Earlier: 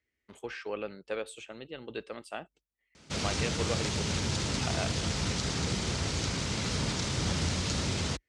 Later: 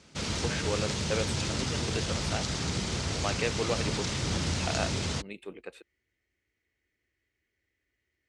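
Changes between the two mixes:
speech +3.5 dB
background: entry −2.95 s

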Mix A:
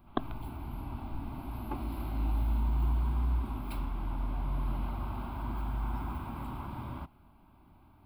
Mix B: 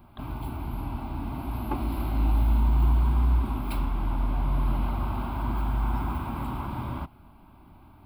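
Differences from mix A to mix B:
speech: add first difference
background +7.5 dB

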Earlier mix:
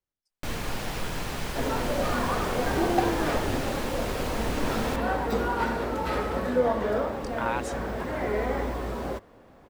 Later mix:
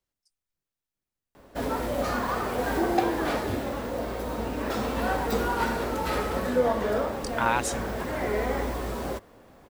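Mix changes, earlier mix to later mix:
speech +4.5 dB
first sound: muted
reverb: off
master: add high-shelf EQ 5,000 Hz +9 dB

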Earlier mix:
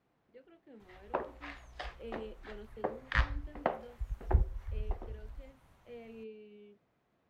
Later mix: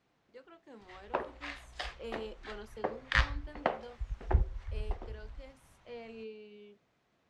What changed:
speech: remove phaser with its sweep stopped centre 2,600 Hz, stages 4
second sound: add high-frequency loss of the air 120 metres
master: add high-shelf EQ 2,400 Hz +11 dB

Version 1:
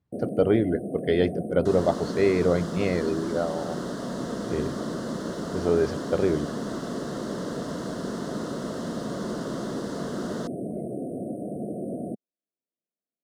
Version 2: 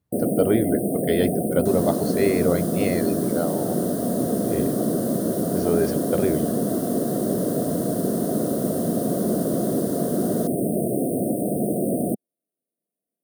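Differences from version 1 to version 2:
first sound +9.0 dB
second sound −5.0 dB
master: remove high-frequency loss of the air 100 metres

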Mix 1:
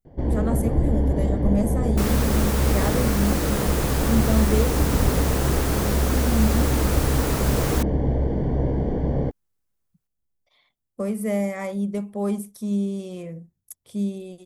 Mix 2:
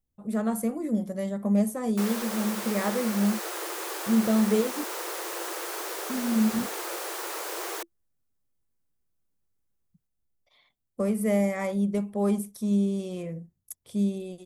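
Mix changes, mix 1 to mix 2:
first sound: muted
second sound −5.0 dB

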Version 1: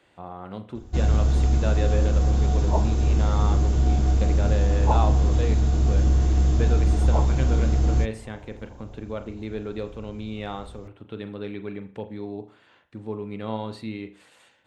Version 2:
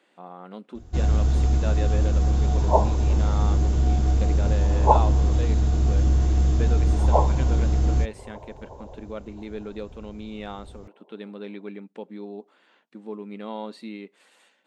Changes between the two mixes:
speech: add linear-phase brick-wall high-pass 170 Hz
second sound +8.5 dB
reverb: off

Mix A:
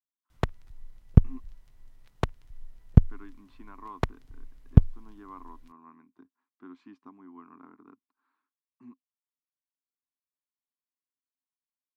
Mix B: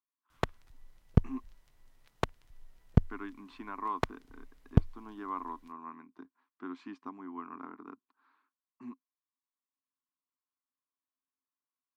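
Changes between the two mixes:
speech +9.0 dB
master: add low-shelf EQ 210 Hz −10.5 dB

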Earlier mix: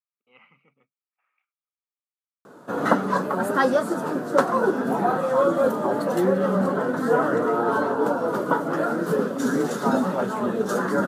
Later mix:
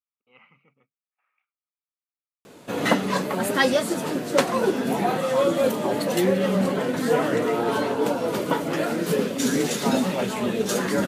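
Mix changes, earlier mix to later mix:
background: add high shelf with overshoot 1,800 Hz +8.5 dB, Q 3
master: remove high-pass filter 130 Hz

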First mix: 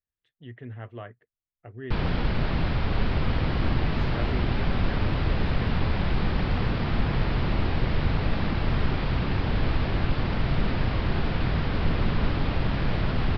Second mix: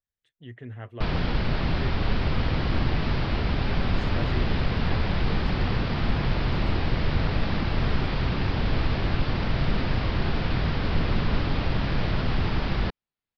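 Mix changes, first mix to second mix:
background: entry −0.90 s
master: remove high-frequency loss of the air 100 metres

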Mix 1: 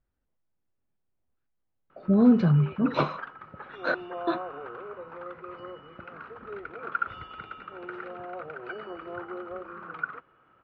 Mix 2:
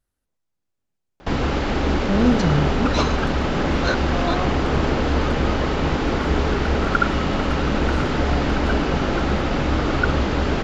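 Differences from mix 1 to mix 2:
first sound: unmuted
second sound +5.5 dB
master: remove high-frequency loss of the air 420 metres

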